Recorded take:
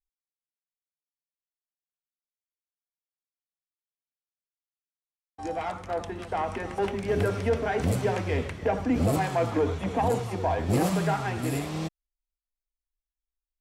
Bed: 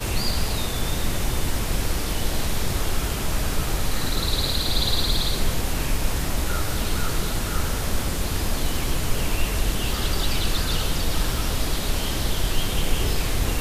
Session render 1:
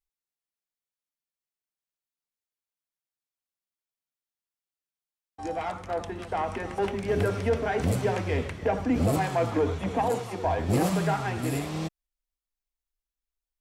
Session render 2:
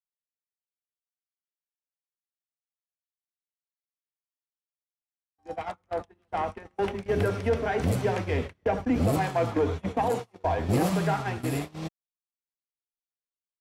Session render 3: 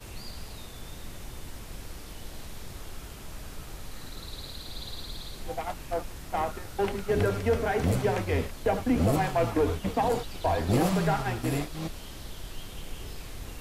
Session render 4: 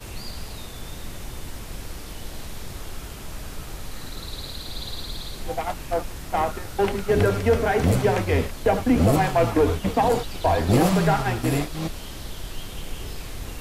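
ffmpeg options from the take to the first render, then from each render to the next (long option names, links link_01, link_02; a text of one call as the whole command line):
ffmpeg -i in.wav -filter_complex "[0:a]asettb=1/sr,asplit=3[link_01][link_02][link_03];[link_01]atrim=end=10.024[link_04];[link_02]atrim=start=10.02:end=10.45,asetpts=PTS-STARTPTS,afade=type=in:duration=0.004:curve=qsin,afade=type=out:start_time=0.426:duration=0.004:curve=qsin,highpass=frequency=240:poles=1[link_05];[link_03]atrim=start=10.446[link_06];[link_04][link_05]acrossfade=duration=0.004:curve1=hsin:curve2=qsin[link_07];[link_07][link_06]acrossfade=duration=0.004:curve1=qsin:curve2=hsin" out.wav
ffmpeg -i in.wav -af "agate=range=-32dB:threshold=-30dB:ratio=16:detection=peak,equalizer=frequency=7900:width=1.8:gain=-3" out.wav
ffmpeg -i in.wav -i bed.wav -filter_complex "[1:a]volume=-17dB[link_01];[0:a][link_01]amix=inputs=2:normalize=0" out.wav
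ffmpeg -i in.wav -af "volume=6dB" out.wav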